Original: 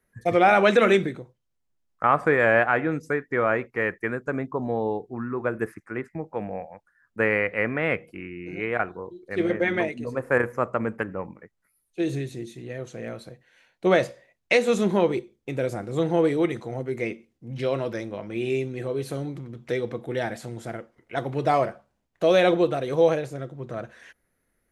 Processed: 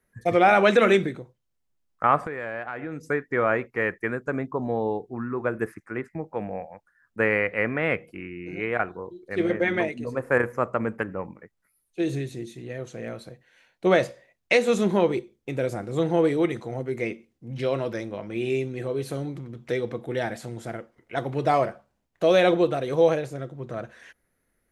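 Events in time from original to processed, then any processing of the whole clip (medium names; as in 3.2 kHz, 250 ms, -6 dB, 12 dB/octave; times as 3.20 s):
2.24–3.09 s: compression 5:1, threshold -30 dBFS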